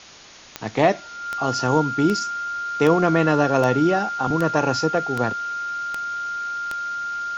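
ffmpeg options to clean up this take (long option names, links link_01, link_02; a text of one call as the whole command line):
ffmpeg -i in.wav -af "adeclick=threshold=4,bandreject=frequency=1400:width=30,afwtdn=0.0089" out.wav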